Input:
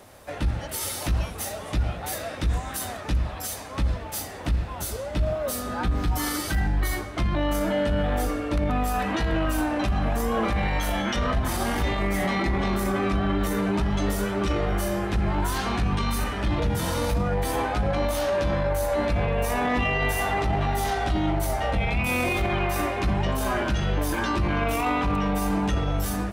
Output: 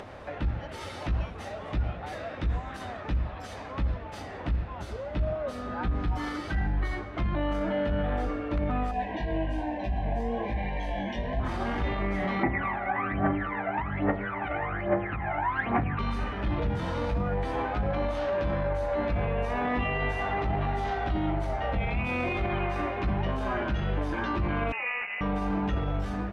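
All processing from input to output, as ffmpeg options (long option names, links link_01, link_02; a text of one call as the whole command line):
ffmpeg -i in.wav -filter_complex "[0:a]asettb=1/sr,asplit=3[link_01][link_02][link_03];[link_01]atrim=end=8.914[link_04];[link_02]atrim=start=8.91:end=11.4,asetpts=PTS-STARTPTS,afade=type=in:duration=0.004:curve=qsin,afade=type=out:start_time=2.486:duration=0.004:curve=qsin,equalizer=frequency=700:width=7.2:gain=7,flanger=delay=15.5:depth=6.4:speed=1.1,asuperstop=centerf=1300:order=8:qfactor=2.5[link_05];[link_03]atrim=start=11.396[link_06];[link_04][link_05]acrossfade=duration=0.004:curve1=hsin:curve2=qsin[link_07];[link_07][link_06]acrossfade=duration=0.004:curve1=qsin:curve2=hsin,asettb=1/sr,asplit=3[link_08][link_09][link_10];[link_08]atrim=end=12.434[link_11];[link_09]atrim=start=12.43:end=15.99,asetpts=PTS-STARTPTS,afade=type=in:duration=0.004:curve=qsin,afade=type=out:start_time=3.556:duration=0.004:curve=qsin,aphaser=in_gain=1:out_gain=1:delay=1.5:decay=0.73:speed=1.2:type=triangular,highpass=150,equalizer=frequency=190:width_type=q:width=4:gain=-10,equalizer=frequency=400:width_type=q:width=4:gain=-7,equalizer=frequency=750:width_type=q:width=4:gain=4,equalizer=frequency=2000:width_type=q:width=4:gain=7,lowpass=frequency=2400:width=0.5412,lowpass=frequency=2400:width=1.3066[link_12];[link_10]atrim=start=15.986[link_13];[link_11][link_12]acrossfade=duration=0.004:curve1=hsin:curve2=qsin[link_14];[link_14][link_13]acrossfade=duration=0.004:curve1=qsin:curve2=hsin,asettb=1/sr,asplit=3[link_15][link_16][link_17];[link_15]atrim=end=24.724[link_18];[link_16]atrim=start=24.72:end=25.21,asetpts=PTS-STARTPTS,afade=type=in:duration=0.004:curve=qsin,afade=type=out:start_time=0.486:duration=0.004:curve=qsin,highpass=frequency=450:width=0.5412,highpass=frequency=450:width=1.3066,lowpass=frequency=2700:width_type=q:width=0.5098,lowpass=frequency=2700:width_type=q:width=0.6013,lowpass=frequency=2700:width_type=q:width=0.9,lowpass=frequency=2700:width_type=q:width=2.563,afreqshift=-3200[link_19];[link_17]atrim=start=25.206[link_20];[link_18][link_19]acrossfade=duration=0.004:curve1=hsin:curve2=qsin[link_21];[link_21][link_20]acrossfade=duration=0.004:curve1=qsin:curve2=hsin,lowpass=2700,acompressor=mode=upward:threshold=-29dB:ratio=2.5,volume=-4dB" out.wav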